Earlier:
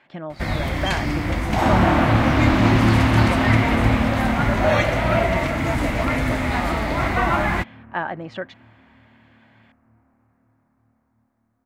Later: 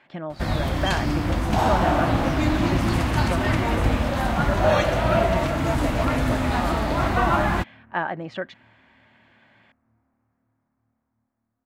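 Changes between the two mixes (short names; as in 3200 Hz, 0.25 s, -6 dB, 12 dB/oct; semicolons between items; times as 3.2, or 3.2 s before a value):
first sound: add bell 2100 Hz -9.5 dB 0.37 oct; second sound -9.0 dB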